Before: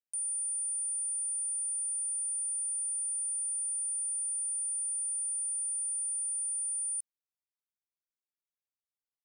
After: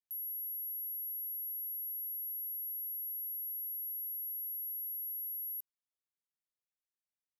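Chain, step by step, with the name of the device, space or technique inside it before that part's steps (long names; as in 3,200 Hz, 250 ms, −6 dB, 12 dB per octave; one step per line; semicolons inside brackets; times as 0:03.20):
nightcore (speed change +25%)
level −6 dB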